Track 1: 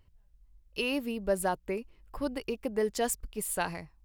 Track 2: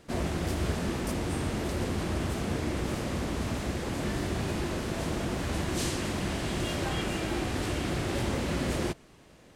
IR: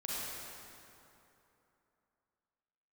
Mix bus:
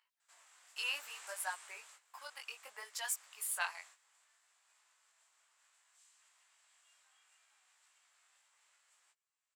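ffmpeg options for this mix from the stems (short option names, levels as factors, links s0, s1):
-filter_complex "[0:a]lowshelf=f=210:g=-3.5,acontrast=70,aphaser=in_gain=1:out_gain=1:delay=1.4:decay=0.31:speed=1.1:type=sinusoidal,volume=0.422,asplit=2[s0][s1];[1:a]equalizer=f=7600:t=o:w=0.39:g=13,alimiter=level_in=1.12:limit=0.0631:level=0:latency=1:release=363,volume=0.891,adelay=200,volume=0.447,afade=t=out:st=1.37:d=0.63:silence=0.334965[s2];[s1]apad=whole_len=430337[s3];[s2][s3]sidechaingate=range=0.282:threshold=0.00251:ratio=16:detection=peak[s4];[s0][s4]amix=inputs=2:normalize=0,highpass=f=1000:w=0.5412,highpass=f=1000:w=1.3066,flanger=delay=16:depth=6.5:speed=0.65"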